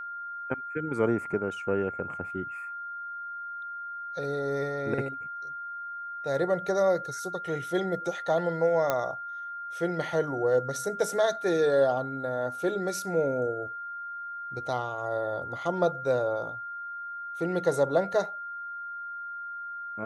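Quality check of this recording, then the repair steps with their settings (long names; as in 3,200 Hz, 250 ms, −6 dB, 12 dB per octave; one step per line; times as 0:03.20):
whistle 1,400 Hz −35 dBFS
0:08.90: click −12 dBFS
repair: click removal
notch filter 1,400 Hz, Q 30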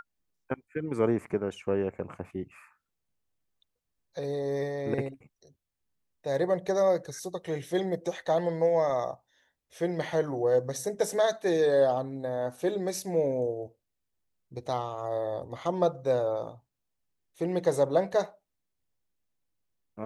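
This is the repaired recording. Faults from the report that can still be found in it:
none of them is left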